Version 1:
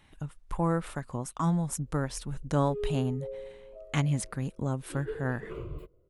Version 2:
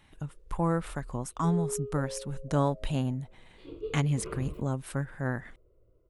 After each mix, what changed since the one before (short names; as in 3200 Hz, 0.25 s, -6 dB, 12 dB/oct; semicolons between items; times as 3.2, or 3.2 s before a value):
background: entry -1.25 s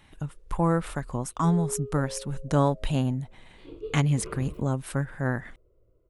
speech +4.0 dB